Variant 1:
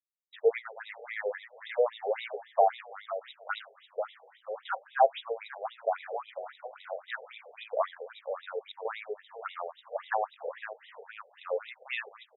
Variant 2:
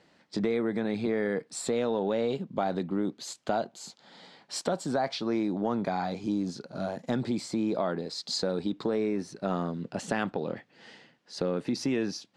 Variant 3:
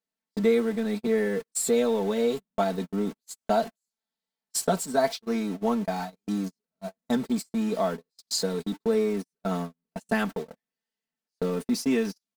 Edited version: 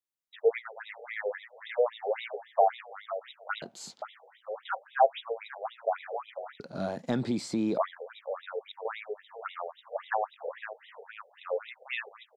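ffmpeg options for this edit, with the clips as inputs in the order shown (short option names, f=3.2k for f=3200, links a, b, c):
-filter_complex "[1:a]asplit=2[a][b];[0:a]asplit=3[c][d][e];[c]atrim=end=3.622[f];[a]atrim=start=3.618:end=4.022[g];[d]atrim=start=4.018:end=6.602[h];[b]atrim=start=6.598:end=7.782[i];[e]atrim=start=7.778[j];[f][g]acrossfade=d=0.004:c1=hsin:c2=hsin[k];[k][h]acrossfade=d=0.004:c1=hsin:c2=hsin[l];[l][i]acrossfade=d=0.004:c1=hsin:c2=hsin[m];[m][j]acrossfade=d=0.004:c1=hsin:c2=hsin"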